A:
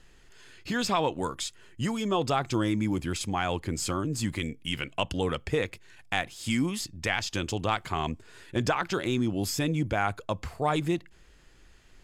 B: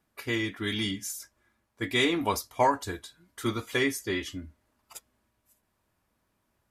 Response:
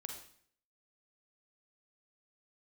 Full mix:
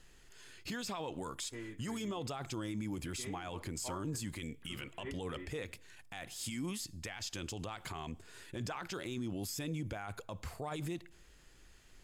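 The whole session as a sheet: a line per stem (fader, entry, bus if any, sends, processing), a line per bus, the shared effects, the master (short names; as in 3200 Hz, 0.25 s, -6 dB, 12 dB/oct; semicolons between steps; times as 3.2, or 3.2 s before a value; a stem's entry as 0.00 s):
-5.0 dB, 0.00 s, send -22 dB, high shelf 6400 Hz +8.5 dB
-16.5 dB, 1.25 s, send -10 dB, Gaussian blur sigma 3.7 samples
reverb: on, RT60 0.60 s, pre-delay 38 ms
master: limiter -31.5 dBFS, peak gain reduction 16 dB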